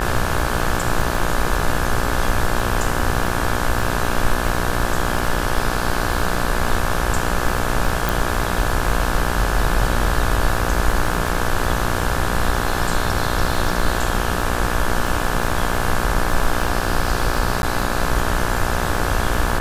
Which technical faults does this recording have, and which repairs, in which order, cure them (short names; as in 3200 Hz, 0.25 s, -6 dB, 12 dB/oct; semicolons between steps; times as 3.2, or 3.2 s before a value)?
buzz 60 Hz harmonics 29 -24 dBFS
crackle 21/s -23 dBFS
8.09 pop
17.62–17.63 gap 11 ms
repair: de-click; de-hum 60 Hz, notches 29; interpolate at 17.62, 11 ms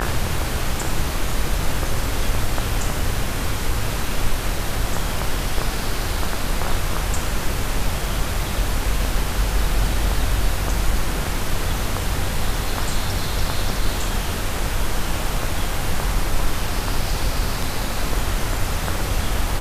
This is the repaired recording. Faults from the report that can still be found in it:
none